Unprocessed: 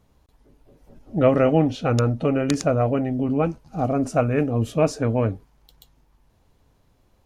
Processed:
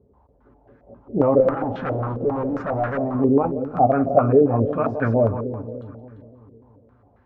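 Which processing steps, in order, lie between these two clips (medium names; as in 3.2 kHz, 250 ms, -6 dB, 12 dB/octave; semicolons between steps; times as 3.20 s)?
high-pass 52 Hz 24 dB/octave; peak limiter -13 dBFS, peak gain reduction 8.5 dB; comb of notches 160 Hz; 1.40–3.15 s: hard clipper -28.5 dBFS, distortion -7 dB; two-band feedback delay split 450 Hz, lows 292 ms, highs 172 ms, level -9.5 dB; clicks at 3.77 s, -10 dBFS; step-sequenced low-pass 7.4 Hz 440–1600 Hz; trim +2.5 dB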